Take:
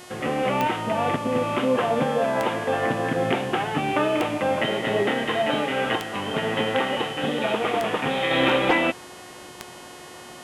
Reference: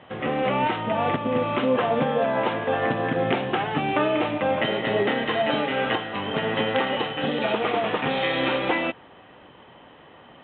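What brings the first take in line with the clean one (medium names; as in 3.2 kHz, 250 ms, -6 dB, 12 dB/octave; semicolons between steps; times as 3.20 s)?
clip repair -11 dBFS; de-click; de-hum 361.2 Hz, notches 33; trim 0 dB, from 8.31 s -4 dB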